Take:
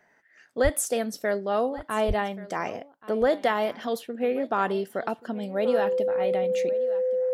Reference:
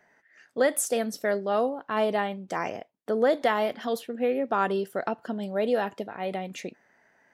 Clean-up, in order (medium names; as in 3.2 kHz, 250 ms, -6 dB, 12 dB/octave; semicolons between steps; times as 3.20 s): band-stop 510 Hz, Q 30; 0.63–0.75 s: high-pass 140 Hz 24 dB/octave; 2.07–2.19 s: high-pass 140 Hz 24 dB/octave; inverse comb 1129 ms -18.5 dB